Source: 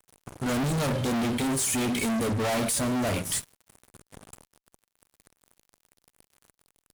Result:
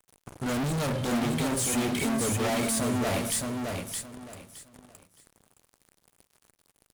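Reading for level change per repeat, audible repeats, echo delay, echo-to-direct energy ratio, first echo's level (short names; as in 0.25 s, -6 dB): -12.5 dB, 3, 0.617 s, -3.5 dB, -4.0 dB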